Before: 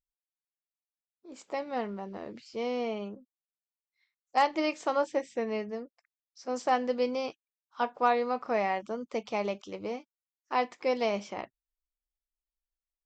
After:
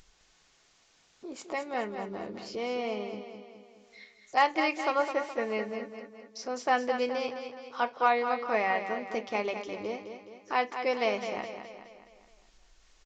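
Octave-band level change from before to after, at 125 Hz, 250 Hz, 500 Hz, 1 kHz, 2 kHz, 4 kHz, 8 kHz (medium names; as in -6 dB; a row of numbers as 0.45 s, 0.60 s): no reading, -1.5 dB, 0.0 dB, +1.5 dB, +5.5 dB, +2.5 dB, +2.0 dB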